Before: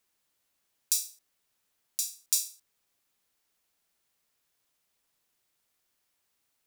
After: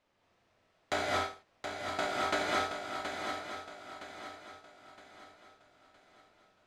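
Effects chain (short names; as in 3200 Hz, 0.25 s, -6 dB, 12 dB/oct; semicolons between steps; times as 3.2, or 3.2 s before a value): FFT order left unsorted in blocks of 128 samples; bell 610 Hz +5 dB 0.73 oct; in parallel at -2 dB: negative-ratio compressor -34 dBFS; on the sum: tape spacing loss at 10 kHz 32 dB; on a send: swung echo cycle 0.965 s, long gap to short 3:1, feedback 38%, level -7 dB; on the sum: non-linear reverb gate 0.26 s rising, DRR -3.5 dB; gain +3 dB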